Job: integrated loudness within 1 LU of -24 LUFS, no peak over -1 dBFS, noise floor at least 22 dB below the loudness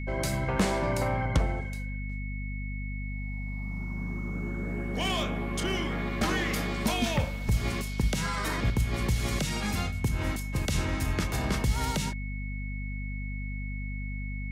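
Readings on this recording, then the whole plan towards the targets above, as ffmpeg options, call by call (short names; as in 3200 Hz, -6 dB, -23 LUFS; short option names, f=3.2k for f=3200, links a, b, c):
hum 50 Hz; harmonics up to 250 Hz; hum level -32 dBFS; steady tone 2200 Hz; tone level -42 dBFS; loudness -31.0 LUFS; peak -15.0 dBFS; loudness target -24.0 LUFS
-> -af "bandreject=f=50:t=h:w=6,bandreject=f=100:t=h:w=6,bandreject=f=150:t=h:w=6,bandreject=f=200:t=h:w=6,bandreject=f=250:t=h:w=6"
-af "bandreject=f=2.2k:w=30"
-af "volume=7dB"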